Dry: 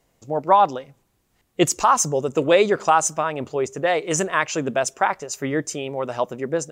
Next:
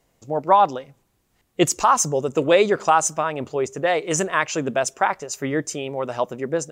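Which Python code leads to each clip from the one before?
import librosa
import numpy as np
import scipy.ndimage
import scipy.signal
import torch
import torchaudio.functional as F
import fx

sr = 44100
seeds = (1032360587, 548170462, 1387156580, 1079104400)

y = x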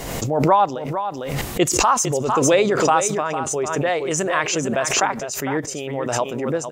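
y = x + 10.0 ** (-9.5 / 20.0) * np.pad(x, (int(453 * sr / 1000.0), 0))[:len(x)]
y = fx.pre_swell(y, sr, db_per_s=38.0)
y = F.gain(torch.from_numpy(y), -1.0).numpy()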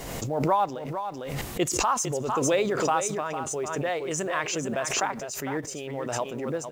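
y = fx.law_mismatch(x, sr, coded='mu')
y = F.gain(torch.from_numpy(y), -8.0).numpy()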